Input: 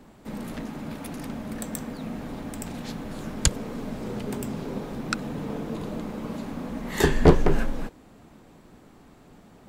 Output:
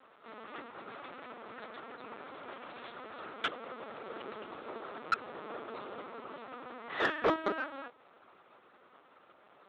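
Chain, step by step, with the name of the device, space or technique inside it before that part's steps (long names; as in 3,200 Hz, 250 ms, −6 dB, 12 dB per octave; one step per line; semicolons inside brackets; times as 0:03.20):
talking toy (linear-prediction vocoder at 8 kHz pitch kept; high-pass filter 530 Hz 12 dB per octave; parametric band 1,300 Hz +8.5 dB 0.38 octaves; soft clipping −17.5 dBFS, distortion −13 dB)
level −3 dB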